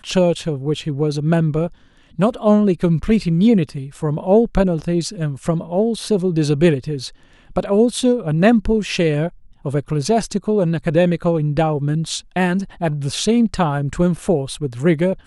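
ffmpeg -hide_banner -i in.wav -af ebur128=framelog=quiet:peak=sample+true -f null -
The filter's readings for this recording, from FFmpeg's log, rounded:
Integrated loudness:
  I:         -18.4 LUFS
  Threshold: -28.6 LUFS
Loudness range:
  LRA:         2.2 LU
  Threshold: -38.5 LUFS
  LRA low:   -19.4 LUFS
  LRA high:  -17.3 LUFS
Sample peak:
  Peak:       -1.7 dBFS
True peak:
  Peak:       -1.7 dBFS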